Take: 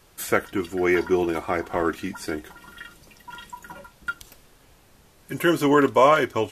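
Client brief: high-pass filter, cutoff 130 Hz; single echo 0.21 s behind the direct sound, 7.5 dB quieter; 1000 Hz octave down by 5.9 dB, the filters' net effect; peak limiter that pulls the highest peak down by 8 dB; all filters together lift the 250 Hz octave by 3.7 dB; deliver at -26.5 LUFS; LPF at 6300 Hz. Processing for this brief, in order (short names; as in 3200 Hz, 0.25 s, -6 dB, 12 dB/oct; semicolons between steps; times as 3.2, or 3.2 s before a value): HPF 130 Hz; LPF 6300 Hz; bell 250 Hz +6 dB; bell 1000 Hz -7.5 dB; limiter -14.5 dBFS; echo 0.21 s -7.5 dB; gain -1.5 dB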